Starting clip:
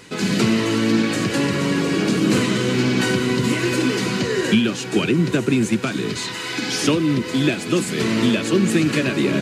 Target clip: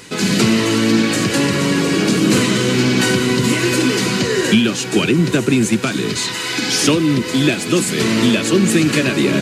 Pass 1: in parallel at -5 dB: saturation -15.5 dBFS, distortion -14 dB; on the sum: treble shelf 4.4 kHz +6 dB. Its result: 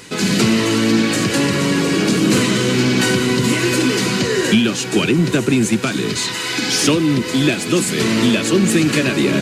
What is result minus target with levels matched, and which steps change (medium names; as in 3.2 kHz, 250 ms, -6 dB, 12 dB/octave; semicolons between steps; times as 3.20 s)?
saturation: distortion +8 dB
change: saturation -9.5 dBFS, distortion -22 dB